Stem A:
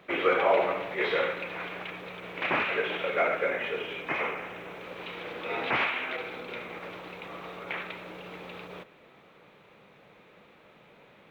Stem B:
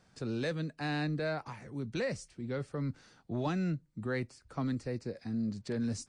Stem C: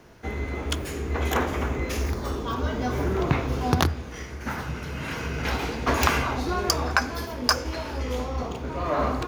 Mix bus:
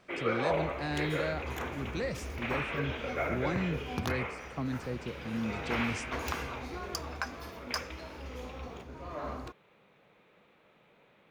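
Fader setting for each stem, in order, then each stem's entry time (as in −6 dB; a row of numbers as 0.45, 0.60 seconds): −7.5, −1.0, −14.0 decibels; 0.00, 0.00, 0.25 seconds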